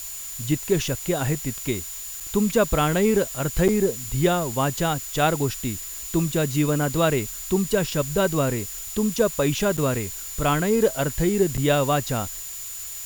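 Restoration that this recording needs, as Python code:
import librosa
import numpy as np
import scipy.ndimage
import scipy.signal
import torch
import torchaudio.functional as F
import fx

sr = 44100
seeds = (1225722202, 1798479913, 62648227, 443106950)

y = fx.notch(x, sr, hz=7000.0, q=30.0)
y = fx.fix_interpolate(y, sr, at_s=(2.2, 3.68, 9.77, 11.57), length_ms=6.5)
y = fx.noise_reduce(y, sr, print_start_s=1.83, print_end_s=2.33, reduce_db=30.0)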